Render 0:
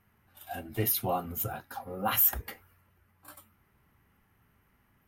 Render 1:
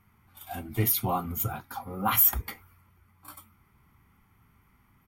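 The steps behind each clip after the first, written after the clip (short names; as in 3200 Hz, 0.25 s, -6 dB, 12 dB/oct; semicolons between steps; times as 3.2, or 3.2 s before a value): comb 0.9 ms, depth 52%; gain +2.5 dB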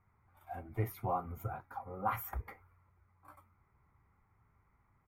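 EQ curve 110 Hz 0 dB, 230 Hz -8 dB, 530 Hz +4 dB, 2200 Hz -4 dB, 3100 Hz -19 dB; gain -7 dB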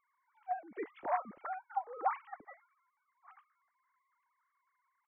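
sine-wave speech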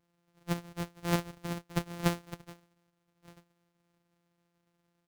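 sample sorter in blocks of 256 samples; gain +4 dB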